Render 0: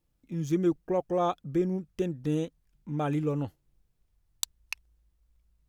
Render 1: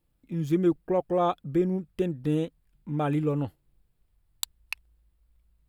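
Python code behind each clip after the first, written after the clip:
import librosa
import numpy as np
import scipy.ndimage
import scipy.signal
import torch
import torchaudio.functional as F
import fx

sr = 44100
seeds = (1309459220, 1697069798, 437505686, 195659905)

y = fx.peak_eq(x, sr, hz=6100.0, db=-11.5, octaves=0.4)
y = y * librosa.db_to_amplitude(2.5)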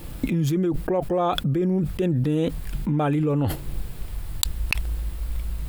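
y = fx.env_flatten(x, sr, amount_pct=100)
y = y * librosa.db_to_amplitude(-3.0)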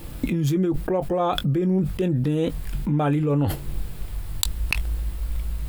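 y = fx.doubler(x, sr, ms=21.0, db=-12.0)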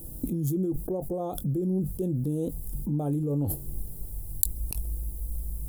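y = fx.curve_eq(x, sr, hz=(370.0, 710.0, 2100.0, 11000.0), db=(0, -5, -28, 11))
y = y * librosa.db_to_amplitude(-6.0)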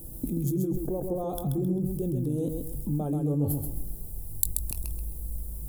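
y = fx.echo_feedback(x, sr, ms=132, feedback_pct=32, wet_db=-5.0)
y = y * librosa.db_to_amplitude(-1.0)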